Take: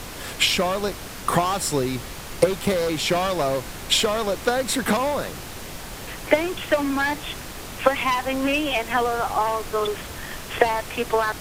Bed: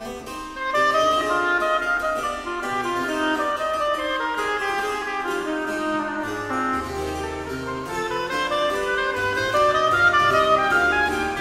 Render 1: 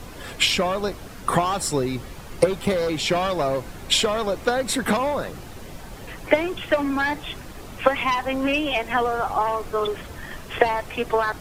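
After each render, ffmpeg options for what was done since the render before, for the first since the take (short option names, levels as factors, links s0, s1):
-af "afftdn=nr=9:nf=-36"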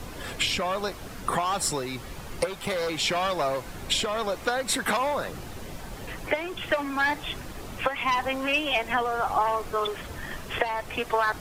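-filter_complex "[0:a]acrossover=split=640[s0][s1];[s0]acompressor=threshold=0.0251:ratio=6[s2];[s1]alimiter=limit=0.2:level=0:latency=1:release=392[s3];[s2][s3]amix=inputs=2:normalize=0"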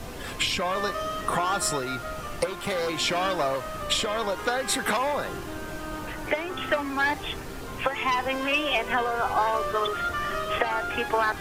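-filter_complex "[1:a]volume=0.237[s0];[0:a][s0]amix=inputs=2:normalize=0"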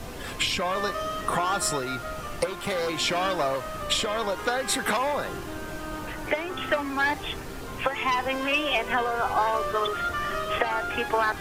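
-af anull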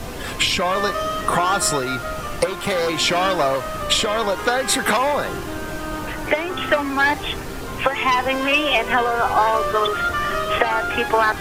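-af "volume=2.24"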